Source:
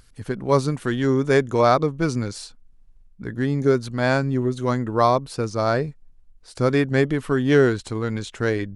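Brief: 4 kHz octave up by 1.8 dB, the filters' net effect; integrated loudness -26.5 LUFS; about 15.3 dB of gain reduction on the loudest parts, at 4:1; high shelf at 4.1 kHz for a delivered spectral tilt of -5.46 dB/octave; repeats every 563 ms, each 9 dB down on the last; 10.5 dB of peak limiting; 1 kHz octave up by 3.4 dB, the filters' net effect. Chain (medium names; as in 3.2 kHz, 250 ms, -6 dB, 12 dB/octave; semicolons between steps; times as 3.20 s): peaking EQ 1 kHz +4.5 dB; peaking EQ 4 kHz +4.5 dB; treble shelf 4.1 kHz -4.5 dB; compression 4:1, threshold -29 dBFS; peak limiter -27 dBFS; feedback delay 563 ms, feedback 35%, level -9 dB; trim +11 dB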